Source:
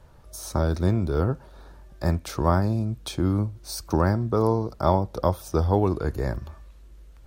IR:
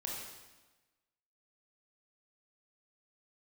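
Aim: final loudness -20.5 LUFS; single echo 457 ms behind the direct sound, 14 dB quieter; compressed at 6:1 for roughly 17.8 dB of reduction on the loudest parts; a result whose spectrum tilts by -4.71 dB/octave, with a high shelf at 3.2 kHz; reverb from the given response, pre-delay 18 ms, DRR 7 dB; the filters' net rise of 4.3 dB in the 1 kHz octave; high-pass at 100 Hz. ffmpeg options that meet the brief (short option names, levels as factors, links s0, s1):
-filter_complex "[0:a]highpass=100,equalizer=f=1000:t=o:g=4.5,highshelf=f=3200:g=7,acompressor=threshold=0.02:ratio=6,aecho=1:1:457:0.2,asplit=2[s0][s1];[1:a]atrim=start_sample=2205,adelay=18[s2];[s1][s2]afir=irnorm=-1:irlink=0,volume=0.398[s3];[s0][s3]amix=inputs=2:normalize=0,volume=6.68"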